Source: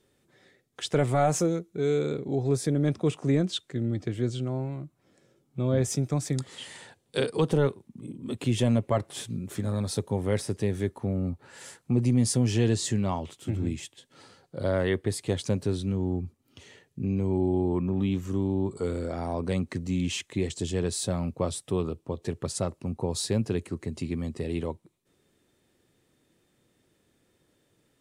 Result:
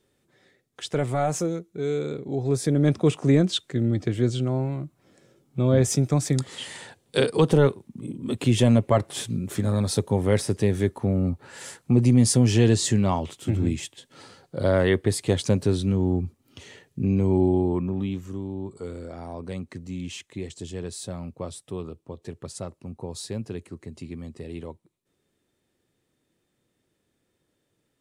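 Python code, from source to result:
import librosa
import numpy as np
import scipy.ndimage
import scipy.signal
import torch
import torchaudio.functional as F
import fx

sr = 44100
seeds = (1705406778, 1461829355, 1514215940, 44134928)

y = fx.gain(x, sr, db=fx.line((2.24, -1.0), (2.89, 5.5), (17.43, 5.5), (18.42, -5.5)))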